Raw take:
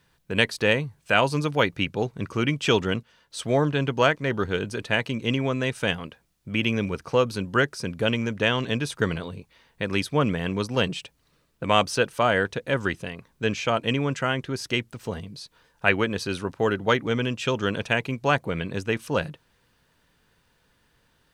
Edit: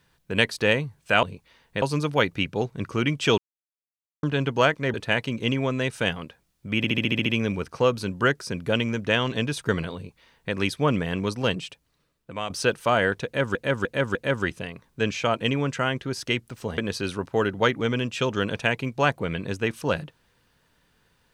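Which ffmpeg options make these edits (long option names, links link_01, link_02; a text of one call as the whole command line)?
ffmpeg -i in.wav -filter_complex "[0:a]asplit=18[link_01][link_02][link_03][link_04][link_05][link_06][link_07][link_08][link_09][link_10][link_11][link_12][link_13][link_14][link_15][link_16][link_17][link_18];[link_01]atrim=end=1.232[link_19];[link_02]atrim=start=9.278:end=9.872[link_20];[link_03]atrim=start=1.228:end=2.79,asetpts=PTS-STARTPTS,afade=type=out:start_time=1.558:duration=0.004:curve=hsin[link_21];[link_04]atrim=start=2.79:end=3.64,asetpts=PTS-STARTPTS,volume=0[link_22];[link_05]atrim=start=3.64:end=4.352,asetpts=PTS-STARTPTS,afade=type=in:duration=0.004:curve=hsin[link_23];[link_06]atrim=start=4.758:end=6.662[link_24];[link_07]atrim=start=6.588:end=6.662[link_25];[link_08]atrim=start=6.588:end=6.662[link_26];[link_09]atrim=start=6.588:end=6.662[link_27];[link_10]atrim=start=6.588:end=6.662[link_28];[link_11]atrim=start=6.588:end=6.662[link_29];[link_12]atrim=start=6.588:end=6.662[link_30];[link_13]atrim=start=6.588:end=11.83,asetpts=PTS-STARTPTS,afade=type=out:start_time=4.052:duration=1.19:silence=0.223872[link_31];[link_14]atrim=start=11.83:end=12.882,asetpts=PTS-STARTPTS,afade=type=in:duration=0.004:curve=hsin:silence=0.223872[link_32];[link_15]atrim=start=12.578:end=12.882[link_33];[link_16]atrim=start=12.578:end=12.882[link_34];[link_17]atrim=start=12.578:end=15.212[link_35];[link_18]atrim=start=16.038[link_36];[link_19][link_20]acrossfade=duration=0.004:curve1=hsin:curve2=hsin[link_37];[link_21][link_22][link_23]concat=n=3:v=0:a=1[link_38];[link_37][link_38]acrossfade=duration=0.004:curve1=hsin:curve2=hsin[link_39];[link_39][link_24]acrossfade=duration=0.004:curve1=hsin:curve2=hsin[link_40];[link_40][link_25]acrossfade=duration=0.004:curve1=hsin:curve2=hsin[link_41];[link_41][link_26]acrossfade=duration=0.004:curve1=hsin:curve2=hsin[link_42];[link_42][link_27]acrossfade=duration=0.004:curve1=hsin:curve2=hsin[link_43];[link_43][link_28]acrossfade=duration=0.004:curve1=hsin:curve2=hsin[link_44];[link_44][link_29]acrossfade=duration=0.004:curve1=hsin:curve2=hsin[link_45];[link_45][link_30]acrossfade=duration=0.004:curve1=hsin:curve2=hsin[link_46];[link_31][link_32]concat=n=2:v=0:a=1[link_47];[link_46][link_47]acrossfade=duration=0.004:curve1=hsin:curve2=hsin[link_48];[link_48][link_33]acrossfade=duration=0.004:curve1=hsin:curve2=hsin[link_49];[link_49][link_34]acrossfade=duration=0.004:curve1=hsin:curve2=hsin[link_50];[link_50][link_35]acrossfade=duration=0.004:curve1=hsin:curve2=hsin[link_51];[link_51][link_36]acrossfade=duration=0.004:curve1=hsin:curve2=hsin" out.wav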